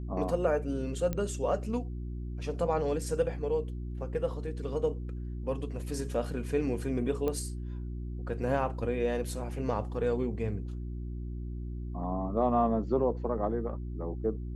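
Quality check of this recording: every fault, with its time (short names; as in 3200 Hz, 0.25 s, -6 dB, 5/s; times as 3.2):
hum 60 Hz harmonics 6 -37 dBFS
1.13 pop -19 dBFS
7.28 pop -20 dBFS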